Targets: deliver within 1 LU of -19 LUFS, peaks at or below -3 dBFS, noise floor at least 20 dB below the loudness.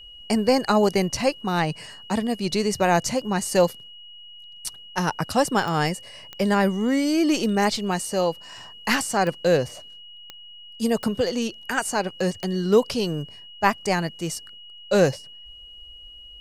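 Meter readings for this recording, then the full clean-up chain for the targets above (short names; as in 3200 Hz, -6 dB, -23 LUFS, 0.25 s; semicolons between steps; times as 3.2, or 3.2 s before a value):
clicks 6; steady tone 2900 Hz; tone level -42 dBFS; loudness -23.5 LUFS; peak -4.0 dBFS; loudness target -19.0 LUFS
-> de-click; notch 2900 Hz, Q 30; gain +4.5 dB; limiter -3 dBFS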